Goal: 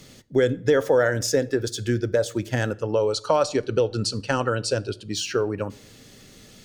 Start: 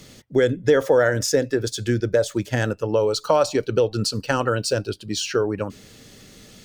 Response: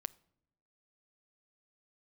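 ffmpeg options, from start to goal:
-filter_complex "[0:a]asettb=1/sr,asplit=3[a][b][c];[a]atrim=end=2.764[d];[b]atrim=start=2.76:end=5.13,asetpts=PTS-STARTPTS,afade=t=in:d=0.004:c=qsin,afade=t=out:st=2.366:d=0.004:c=qsin,lowpass=f=10k:w=0.5412,lowpass=f=10k:w=1.3066[e];[c]atrim=start=5.126[f];[d][e]acrossfade=d=0.004:c1=hsin:c2=qsin[g];[g][f]acrossfade=d=0.004:c1=qsin:c2=hsin[h];[1:a]atrim=start_sample=2205,afade=t=out:st=0.31:d=0.01,atrim=end_sample=14112,asetrate=40572,aresample=44100[i];[h][i]afir=irnorm=-1:irlink=0"

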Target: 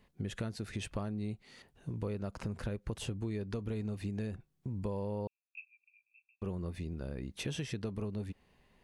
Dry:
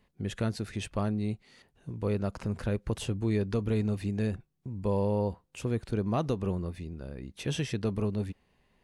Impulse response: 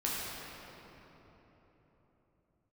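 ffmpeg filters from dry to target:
-filter_complex "[0:a]acompressor=threshold=-36dB:ratio=6,asettb=1/sr,asplit=3[a][b][c];[a]atrim=end=5.274[d];[b]atrim=start=5.27:end=6.42,asetpts=PTS-STARTPTS,afade=t=in:d=0.004:c=qsin,afade=t=out:st=1.146:d=0.004:c=qsin,asuperpass=centerf=2500:order=12:qfactor=6.9[e];[c]atrim=start=6.416[f];[d][e]acrossfade=d=0.004:c1=hsin:c2=qsin[g];[g][f]acrossfade=d=0.004:c1=qsin:c2=hsin,volume=1.5dB"

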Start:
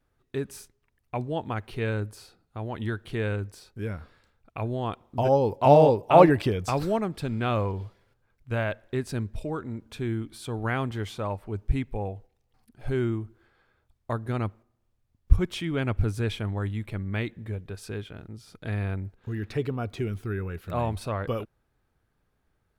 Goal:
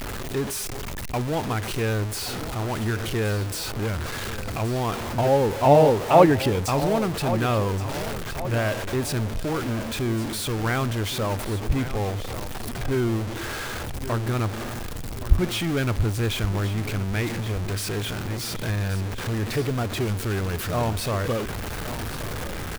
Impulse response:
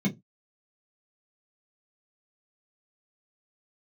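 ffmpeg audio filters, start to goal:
-filter_complex "[0:a]aeval=exprs='val(0)+0.5*0.0531*sgn(val(0))':c=same,asplit=2[a][b];[b]aecho=0:1:1123|2246|3369|4492|5615:0.224|0.105|0.0495|0.0232|0.0109[c];[a][c]amix=inputs=2:normalize=0"

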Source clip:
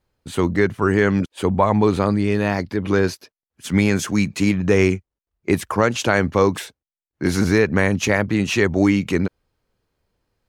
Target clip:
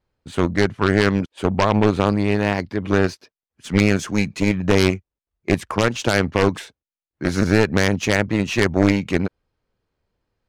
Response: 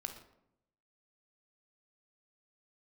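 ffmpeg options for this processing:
-af "adynamicsmooth=sensitivity=5.5:basefreq=7.2k,aeval=exprs='0.75*(cos(1*acos(clip(val(0)/0.75,-1,1)))-cos(1*PI/2))+0.299*(cos(6*acos(clip(val(0)/0.75,-1,1)))-cos(6*PI/2))+0.188*(cos(8*acos(clip(val(0)/0.75,-1,1)))-cos(8*PI/2))':c=same,volume=-2.5dB"

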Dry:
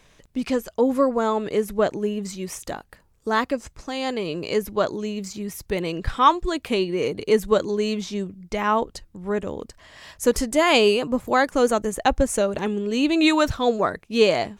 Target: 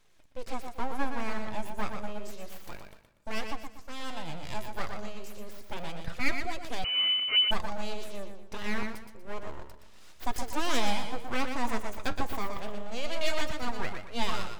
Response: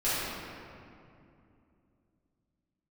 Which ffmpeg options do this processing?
-filter_complex "[0:a]aeval=exprs='abs(val(0))':c=same,asplit=2[a][b];[b]aecho=0:1:120|240|360|480:0.473|0.161|0.0547|0.0186[c];[a][c]amix=inputs=2:normalize=0,flanger=delay=2.2:depth=8.2:regen=72:speed=0.29:shape=triangular,asplit=2[d][e];[1:a]atrim=start_sample=2205,highshelf=f=4.5k:g=8[f];[e][f]afir=irnorm=-1:irlink=0,volume=-34dB[g];[d][g]amix=inputs=2:normalize=0,asettb=1/sr,asplit=3[h][i][j];[h]atrim=end=6.844[k];[i]atrim=start=6.84:end=7.51,asetpts=PTS-STARTPTS,afade=t=in:d=0.004:c=qsin,afade=t=out:st=0.666:d=0.004:c=qsin,lowpass=f=2.6k:t=q:w=0.5098,lowpass=f=2.6k:t=q:w=0.6013,lowpass=f=2.6k:t=q:w=0.9,lowpass=f=2.6k:t=q:w=2.563,afreqshift=-3000[l];[j]atrim=start=7.506[m];[k][l]acrossfade=d=0.004:c1=hsin:c2=qsin[n];[n][m]acrossfade=d=0.004:c1=qsin:c2=hsin,volume=-6dB"

